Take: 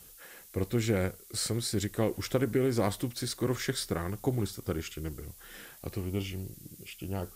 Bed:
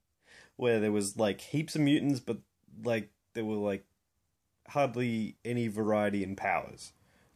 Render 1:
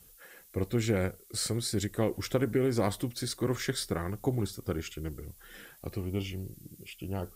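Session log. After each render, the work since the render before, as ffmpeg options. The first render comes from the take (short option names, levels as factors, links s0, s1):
-af "afftdn=nr=6:nf=-53"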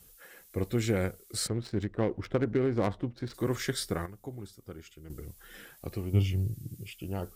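-filter_complex "[0:a]asplit=3[s0][s1][s2];[s0]afade=t=out:st=1.46:d=0.02[s3];[s1]adynamicsmooth=sensitivity=4:basefreq=1200,afade=t=in:st=1.46:d=0.02,afade=t=out:st=3.33:d=0.02[s4];[s2]afade=t=in:st=3.33:d=0.02[s5];[s3][s4][s5]amix=inputs=3:normalize=0,asettb=1/sr,asplit=3[s6][s7][s8];[s6]atrim=end=6.134[s9];[s7]atrim=start=6.13:end=6.92,asetpts=PTS-STARTPTS,afade=t=in:d=0.004:c=qsin,afade=t=out:st=0.786:d=0.004:c=qsin,equalizer=f=110:w=1.5:g=13.5[s10];[s8]atrim=start=6.916[s11];[s9][s10]acrossfade=d=0.004:c1=hsin:c2=qsin[s12];[s12][s11]acrossfade=d=0.004:c1=qsin:c2=hsin,asplit=3[s13][s14][s15];[s13]atrim=end=4.062[s16];[s14]atrim=start=4.058:end=5.102,asetpts=PTS-STARTPTS,volume=0.266[s17];[s15]atrim=start=5.098[s18];[s16][s17]acrossfade=d=0.004:c1=hsin:c2=hsin[s19];[s19][s18]acrossfade=d=0.004:c1=hsin:c2=hsin"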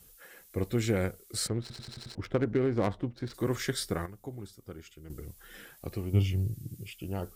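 -filter_complex "[0:a]asplit=7[s0][s1][s2][s3][s4][s5][s6];[s0]atrim=end=1.702[s7];[s1]atrim=start=1.608:end=1.702[s8];[s2]atrim=start=1.608:end=1.702[s9];[s3]atrim=start=1.608:end=1.702[s10];[s4]atrim=start=1.608:end=1.702[s11];[s5]atrim=start=1.608:end=1.702[s12];[s6]atrim=start=2.148[s13];[s7][s8]acrossfade=d=0.004:c1=hsin:c2=hsin[s14];[s14][s9]acrossfade=d=0.004:c1=hsin:c2=hsin[s15];[s15][s10]acrossfade=d=0.004:c1=hsin:c2=hsin[s16];[s16][s11]acrossfade=d=0.004:c1=hsin:c2=hsin[s17];[s17][s12]acrossfade=d=0.004:c1=hsin:c2=hsin[s18];[s18][s13]acrossfade=d=0.004:c1=hsin:c2=hsin"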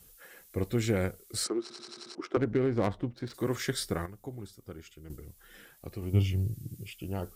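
-filter_complex "[0:a]asettb=1/sr,asplit=3[s0][s1][s2];[s0]atrim=end=1.444[s3];[s1]atrim=start=1.44:end=2.37,asetpts=PTS-STARTPTS,afade=t=in:d=0.004:c=qsin,afade=t=out:st=0.926:d=0.004:c=qsin,highpass=f=270:w=0.5412,highpass=f=270:w=1.3066,equalizer=f=350:t=q:w=4:g=9,equalizer=f=530:t=q:w=4:g=-5,equalizer=f=1200:t=q:w=4:g=8,equalizer=f=1800:t=q:w=4:g=-4,equalizer=f=3500:t=q:w=4:g=-3,equalizer=f=5700:t=q:w=4:g=5,lowpass=f=9700:w=0.5412,lowpass=f=9700:w=1.3066[s4];[s2]atrim=start=2.366[s5];[s3][s4]acrossfade=d=0.004:c1=hsin:c2=qsin[s6];[s6][s5]acrossfade=d=0.004:c1=qsin:c2=hsin,asettb=1/sr,asplit=3[s7][s8][s9];[s7]atrim=end=3.144[s10];[s8]atrim=start=3.14:end=3.68,asetpts=PTS-STARTPTS,afade=t=in:d=0.004:c=qsin,afade=t=out:st=0.536:d=0.004:c=qsin,highpass=f=100:p=1[s11];[s9]atrim=start=3.676[s12];[s10][s11]acrossfade=d=0.004:c1=hsin:c2=qsin[s13];[s13][s12]acrossfade=d=0.004:c1=qsin:c2=hsin,asplit=3[s14][s15][s16];[s14]atrim=end=5.162[s17];[s15]atrim=start=5.158:end=6.022,asetpts=PTS-STARTPTS,volume=0.631[s18];[s16]atrim=start=6.018[s19];[s17][s18]acrossfade=d=0.004:c1=hsin:c2=hsin[s20];[s20][s19]acrossfade=d=0.004:c1=hsin:c2=hsin"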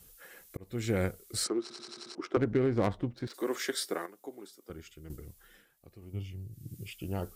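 -filter_complex "[0:a]asettb=1/sr,asplit=3[s0][s1][s2];[s0]atrim=end=3.274[s3];[s1]atrim=start=3.27:end=4.7,asetpts=PTS-STARTPTS,afade=t=in:d=0.004:c=qsin,afade=t=out:st=1.426:d=0.004:c=qsin,highpass=f=280:w=0.5412,highpass=f=280:w=1.3066[s4];[s2]atrim=start=4.696[s5];[s3][s4]acrossfade=d=0.004:c1=hsin:c2=qsin[s6];[s6][s5]acrossfade=d=0.004:c1=qsin:c2=hsin,asplit=4[s7][s8][s9][s10];[s7]atrim=end=0.57,asetpts=PTS-STARTPTS,afade=t=out:st=0.566:d=0.004:c=hsin[s11];[s8]atrim=start=0.57:end=5.65,asetpts=PTS-STARTPTS,afade=t=in:d=0.44,afade=t=out:st=4.65:d=0.43:c=qsin:silence=0.223872[s12];[s9]atrim=start=5.65:end=6.5,asetpts=PTS-STARTPTS,volume=0.224[s13];[s10]atrim=start=6.5,asetpts=PTS-STARTPTS,afade=t=in:d=0.43:c=qsin:silence=0.223872[s14];[s11][s12][s13][s14]concat=n=4:v=0:a=1"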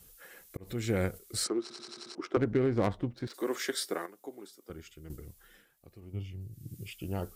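-filter_complex "[0:a]asplit=3[s0][s1][s2];[s0]afade=t=out:st=0.63:d=0.02[s3];[s1]acompressor=mode=upward:threshold=0.0224:ratio=2.5:attack=3.2:release=140:knee=2.83:detection=peak,afade=t=in:st=0.63:d=0.02,afade=t=out:st=1.17:d=0.02[s4];[s2]afade=t=in:st=1.17:d=0.02[s5];[s3][s4][s5]amix=inputs=3:normalize=0,asettb=1/sr,asplit=3[s6][s7][s8];[s6]atrim=end=6.004[s9];[s7]atrim=start=6:end=6.41,asetpts=PTS-STARTPTS,afade=t=in:d=0.004:c=qsin,afade=t=out:st=0.406:d=0.004:c=qsin,highshelf=f=5300:g=-6[s10];[s8]atrim=start=6.406[s11];[s9][s10]acrossfade=d=0.004:c1=hsin:c2=qsin[s12];[s12][s11]acrossfade=d=0.004:c1=qsin:c2=hsin"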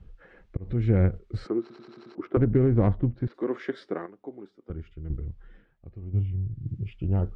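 -af "lowpass=2800,aemphasis=mode=reproduction:type=riaa"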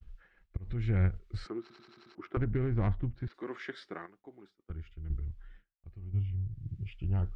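-af "agate=range=0.0224:threshold=0.00501:ratio=3:detection=peak,equalizer=f=125:t=o:w=1:g=-6,equalizer=f=250:t=o:w=1:g=-9,equalizer=f=500:t=o:w=1:g=-12,equalizer=f=1000:t=o:w=1:g=-3"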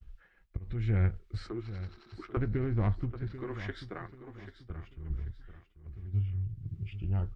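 -filter_complex "[0:a]asplit=2[s0][s1];[s1]adelay=19,volume=0.211[s2];[s0][s2]amix=inputs=2:normalize=0,aecho=1:1:788|1576|2364:0.237|0.0806|0.0274"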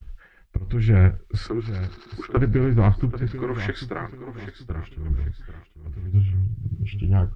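-af "volume=3.76"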